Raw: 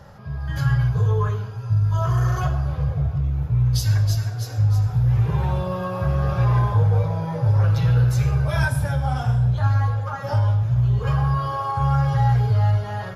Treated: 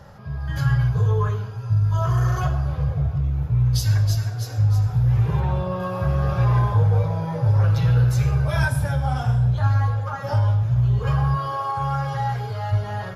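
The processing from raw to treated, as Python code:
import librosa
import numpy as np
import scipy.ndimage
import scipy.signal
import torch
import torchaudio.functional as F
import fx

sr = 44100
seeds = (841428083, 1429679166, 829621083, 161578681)

y = fx.high_shelf(x, sr, hz=5200.0, db=-9.5, at=(5.4, 5.8))
y = fx.highpass(y, sr, hz=fx.line((11.35, 160.0), (12.71, 430.0)), slope=6, at=(11.35, 12.71), fade=0.02)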